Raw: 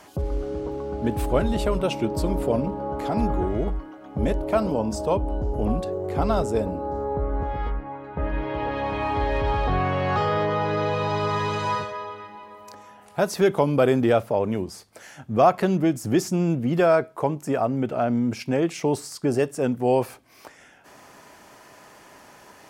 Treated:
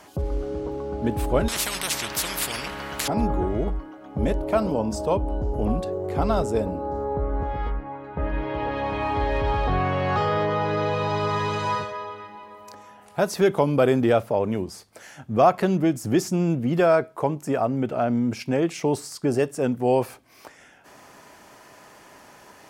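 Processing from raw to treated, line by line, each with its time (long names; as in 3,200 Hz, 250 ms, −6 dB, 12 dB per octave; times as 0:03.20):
0:01.48–0:03.08: every bin compressed towards the loudest bin 10 to 1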